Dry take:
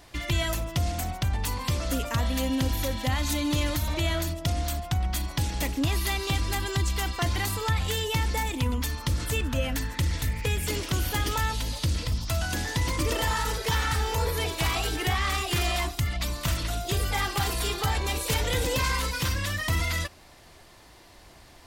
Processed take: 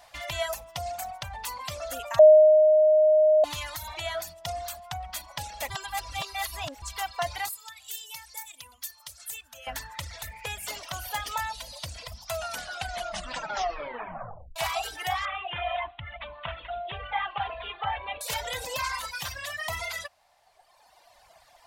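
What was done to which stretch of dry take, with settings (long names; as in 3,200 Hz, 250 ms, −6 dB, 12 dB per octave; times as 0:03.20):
0:02.19–0:03.44: beep over 618 Hz −10.5 dBFS
0:05.70–0:06.82: reverse
0:07.49–0:09.67: first-order pre-emphasis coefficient 0.9
0:12.32: tape stop 2.24 s
0:15.25–0:18.21: Butterworth low-pass 3,400 Hz 72 dB per octave
whole clip: reverb reduction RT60 1.9 s; low shelf with overshoot 480 Hz −11.5 dB, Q 3; level −2.5 dB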